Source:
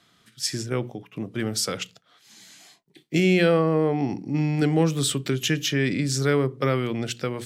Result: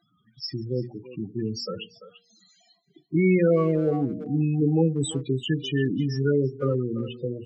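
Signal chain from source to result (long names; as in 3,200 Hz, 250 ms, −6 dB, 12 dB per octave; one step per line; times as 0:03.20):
spectral peaks only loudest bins 8
hum removal 235.3 Hz, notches 3
far-end echo of a speakerphone 340 ms, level −13 dB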